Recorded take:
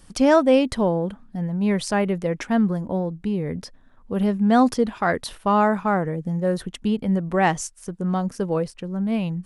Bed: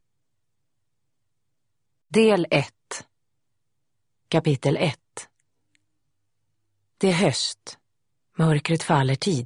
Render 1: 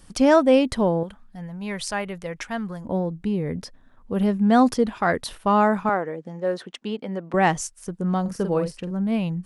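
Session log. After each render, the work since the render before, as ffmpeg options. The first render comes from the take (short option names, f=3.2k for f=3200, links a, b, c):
-filter_complex "[0:a]asettb=1/sr,asplit=3[a][b][c];[a]atrim=end=1.034[d];[b]atrim=start=1.03:end=2.85,asetpts=PTS-STARTPTS,afade=t=in:d=0.004:c=qsin,afade=t=out:st=1.816:d=0.004:c=qsin,equalizer=f=270:w=0.54:g=-12[e];[c]atrim=start=2.846[f];[d][e]acrossfade=d=0.004:c1=hsin:c2=qsin[g];[g][f]acrossfade=d=0.004:c1=qsin:c2=hsin,asettb=1/sr,asplit=3[h][i][j];[h]atrim=end=5.894[k];[i]atrim=start=5.89:end=7.34,asetpts=PTS-STARTPTS,afade=t=in:d=0.004:c=qsin,afade=t=out:st=1.446:d=0.004:c=qsin,highpass=340,lowpass=5.8k[l];[j]atrim=start=7.336[m];[k][l]acrossfade=d=0.004:c1=hsin:c2=qsin[n];[n][m]acrossfade=d=0.004:c1=qsin:c2=hsin,asettb=1/sr,asplit=3[o][p][q];[o]atrim=end=8.214[r];[p]atrim=start=8.21:end=8.91,asetpts=PTS-STARTPTS,afade=t=in:d=0.004:c=qsin,afade=t=out:st=0.696:d=0.004:c=qsin,asplit=2[s][t];[t]adelay=46,volume=-7.5dB[u];[s][u]amix=inputs=2:normalize=0,atrim=end_sample=30870[v];[q]atrim=start=8.906[w];[r][v]acrossfade=d=0.004:c1=hsin:c2=qsin[x];[x][w]acrossfade=d=0.004:c1=qsin:c2=hsin"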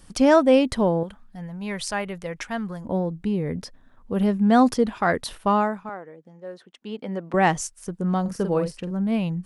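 -filter_complex "[0:a]asplit=3[a][b][c];[a]atrim=end=5.79,asetpts=PTS-STARTPTS,afade=t=out:st=5.48:d=0.31:silence=0.237137[d];[b]atrim=start=5.79:end=6.77,asetpts=PTS-STARTPTS,volume=-12.5dB[e];[c]atrim=start=6.77,asetpts=PTS-STARTPTS,afade=t=in:d=0.31:silence=0.237137[f];[d][e][f]concat=n=3:v=0:a=1"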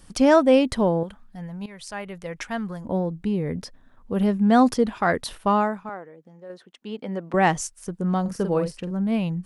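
-filter_complex "[0:a]asettb=1/sr,asplit=3[a][b][c];[a]atrim=end=6.054[d];[b]atrim=start=6.05:end=6.5,asetpts=PTS-STARTPTS,afade=t=in:d=0.004:c=qsin,afade=t=out:st=0.446:d=0.004:c=qsin,acompressor=threshold=-44dB:ratio=1.5:attack=3.2:release=140:knee=1:detection=peak[e];[c]atrim=start=6.496[f];[d][e]acrossfade=d=0.004:c1=hsin:c2=qsin[g];[g][f]acrossfade=d=0.004:c1=qsin:c2=hsin,asplit=2[h][i];[h]atrim=end=1.66,asetpts=PTS-STARTPTS,afade=t=out:st=1.656:d=0.004:c=hsin:silence=0.158489[j];[i]atrim=start=1.66,asetpts=PTS-STARTPTS,afade=t=in:d=0.78:silence=0.158489[k];[j][k]concat=n=2:v=0:a=1"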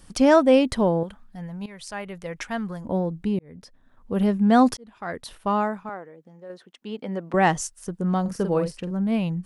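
-filter_complex "[0:a]asettb=1/sr,asplit=3[a][b][c];[a]atrim=end=7.444[d];[b]atrim=start=7.44:end=7.93,asetpts=PTS-STARTPTS,afade=t=in:d=0.004:c=qsin,afade=t=out:st=0.486:d=0.004:c=qsin,bandreject=f=2.3k:w=12[e];[c]atrim=start=7.926[f];[d][e]acrossfade=d=0.004:c1=hsin:c2=qsin[g];[g][f]acrossfade=d=0.004:c1=qsin:c2=hsin,asplit=3[h][i][j];[h]atrim=end=3.39,asetpts=PTS-STARTPTS,afade=t=out:st=3.386:d=0.004:c=hsin[k];[i]atrim=start=3.39:end=4.77,asetpts=PTS-STARTPTS,afade=t=in:d=0.76,afade=t=out:st=1.376:d=0.004:c=hsin[l];[j]atrim=start=4.77,asetpts=PTS-STARTPTS,afade=t=in:d=1.06[m];[k][l][m]concat=n=3:v=0:a=1"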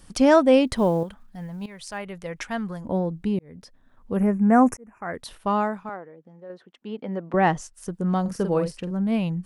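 -filter_complex "[0:a]asettb=1/sr,asplit=3[a][b][c];[a]atrim=end=0.674[d];[b]atrim=start=0.67:end=1.98,asetpts=PTS-STARTPTS,afade=t=in:d=0.004:c=qsin,afade=t=out:st=1.306:d=0.004:c=qsin,acrusher=bits=9:mode=log:mix=0:aa=0.000001[e];[c]atrim=start=1.976[f];[d][e]acrossfade=d=0.004:c1=hsin:c2=qsin[g];[g][f]acrossfade=d=0.004:c1=qsin:c2=hsin,asettb=1/sr,asplit=3[h][i][j];[h]atrim=end=4.174[k];[i]atrim=start=4.17:end=5.14,asetpts=PTS-STARTPTS,afade=t=in:d=0.004:c=qsin,afade=t=out:st=0.966:d=0.004:c=qsin,asuperstop=centerf=3900:order=8:qfactor=1.1[l];[j]atrim=start=5.136[m];[k][l]acrossfade=d=0.004:c1=hsin:c2=qsin[n];[n][m]acrossfade=d=0.004:c1=qsin:c2=hsin,asettb=1/sr,asplit=3[o][p][q];[o]atrim=end=5.964[r];[p]atrim=start=5.96:end=7.74,asetpts=PTS-STARTPTS,afade=t=in:d=0.004:c=qsin,afade=t=out:st=1.776:d=0.004:c=qsin,lowpass=f=2.2k:p=1[s];[q]atrim=start=7.736[t];[r][s]acrossfade=d=0.004:c1=hsin:c2=qsin[u];[u][t]acrossfade=d=0.004:c1=qsin:c2=hsin"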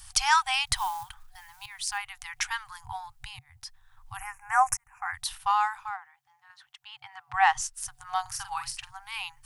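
-af "afftfilt=real='re*(1-between(b*sr/4096,130,740))':imag='im*(1-between(b*sr/4096,130,740))':win_size=4096:overlap=0.75,highshelf=f=2.9k:g=10"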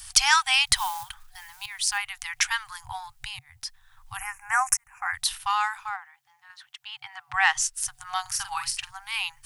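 -filter_complex "[0:a]acrossover=split=1400[a][b];[a]alimiter=limit=-24dB:level=0:latency=1:release=277[c];[b]acontrast=84[d];[c][d]amix=inputs=2:normalize=0"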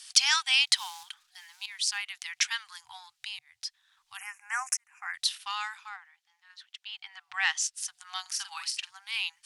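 -af "bandpass=f=4k:t=q:w=0.99:csg=0"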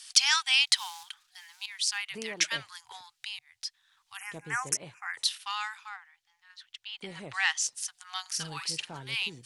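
-filter_complex "[1:a]volume=-24dB[a];[0:a][a]amix=inputs=2:normalize=0"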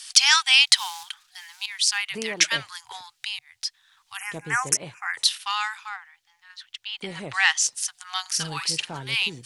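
-af "volume=7.5dB,alimiter=limit=-1dB:level=0:latency=1"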